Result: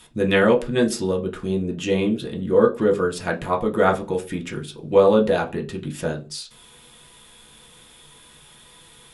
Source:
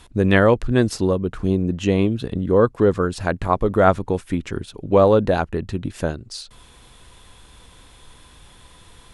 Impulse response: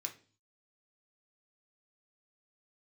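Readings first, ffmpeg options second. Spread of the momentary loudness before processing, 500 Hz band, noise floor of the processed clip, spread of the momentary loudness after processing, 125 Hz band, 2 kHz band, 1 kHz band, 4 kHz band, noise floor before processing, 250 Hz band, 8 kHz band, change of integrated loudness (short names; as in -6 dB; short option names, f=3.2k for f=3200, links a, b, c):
12 LU, -0.5 dB, -50 dBFS, 14 LU, -7.0 dB, -1.0 dB, -2.5 dB, +1.5 dB, -49 dBFS, -2.5 dB, n/a, -1.5 dB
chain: -filter_complex "[1:a]atrim=start_sample=2205,asetrate=61740,aresample=44100[a];[0:a][a]afir=irnorm=-1:irlink=0,volume=5.5dB"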